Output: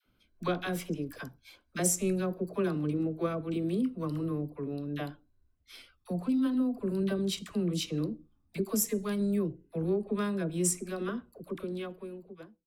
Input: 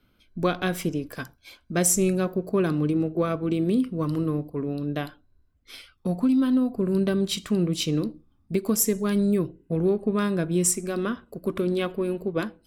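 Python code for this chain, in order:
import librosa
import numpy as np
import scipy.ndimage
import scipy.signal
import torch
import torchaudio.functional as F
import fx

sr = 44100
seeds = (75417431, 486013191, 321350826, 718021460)

y = fx.fade_out_tail(x, sr, length_s=1.65)
y = fx.dispersion(y, sr, late='lows', ms=57.0, hz=640.0)
y = y * 10.0 ** (-7.0 / 20.0)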